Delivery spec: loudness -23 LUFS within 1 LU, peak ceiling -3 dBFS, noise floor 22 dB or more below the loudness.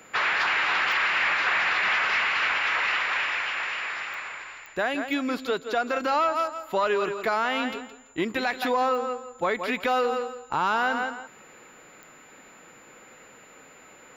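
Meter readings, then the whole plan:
clicks found 6; steady tone 7.1 kHz; tone level -55 dBFS; loudness -25.0 LUFS; peak level -15.5 dBFS; loudness target -23.0 LUFS
-> de-click; band-stop 7.1 kHz, Q 30; trim +2 dB

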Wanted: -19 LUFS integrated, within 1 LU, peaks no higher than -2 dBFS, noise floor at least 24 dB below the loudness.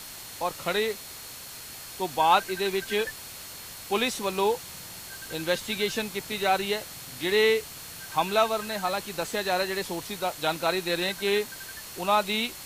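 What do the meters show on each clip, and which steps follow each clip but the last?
steady tone 4.3 kHz; tone level -50 dBFS; noise floor -42 dBFS; noise floor target -52 dBFS; loudness -27.5 LUFS; peak level -9.5 dBFS; loudness target -19.0 LUFS
-> band-stop 4.3 kHz, Q 30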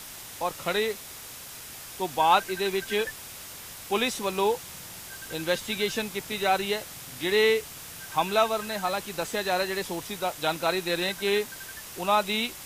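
steady tone not found; noise floor -43 dBFS; noise floor target -52 dBFS
-> noise reduction 9 dB, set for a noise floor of -43 dBFS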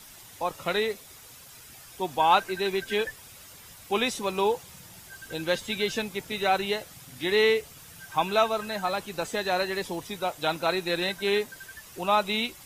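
noise floor -49 dBFS; noise floor target -52 dBFS
-> noise reduction 6 dB, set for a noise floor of -49 dBFS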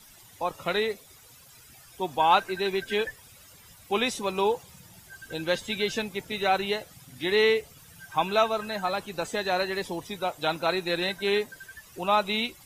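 noise floor -53 dBFS; loudness -27.5 LUFS; peak level -9.5 dBFS; loudness target -19.0 LUFS
-> trim +8.5 dB; peak limiter -2 dBFS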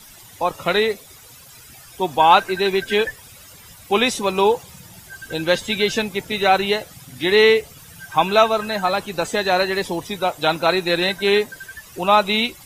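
loudness -19.0 LUFS; peak level -2.0 dBFS; noise floor -44 dBFS

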